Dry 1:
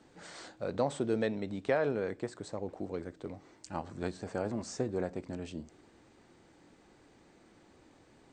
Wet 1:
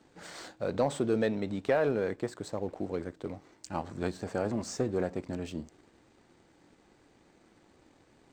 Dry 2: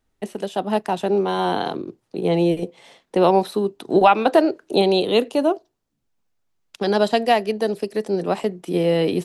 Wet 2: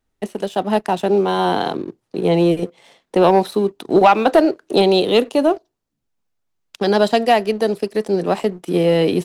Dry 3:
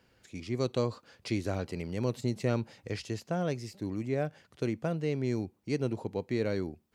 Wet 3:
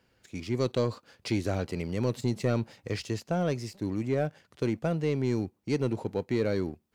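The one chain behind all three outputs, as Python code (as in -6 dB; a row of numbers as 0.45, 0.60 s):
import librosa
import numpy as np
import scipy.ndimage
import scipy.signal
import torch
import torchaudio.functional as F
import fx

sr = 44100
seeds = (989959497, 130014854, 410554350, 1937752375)

y = fx.leveller(x, sr, passes=1)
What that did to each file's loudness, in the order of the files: +3.0, +3.0, +3.0 LU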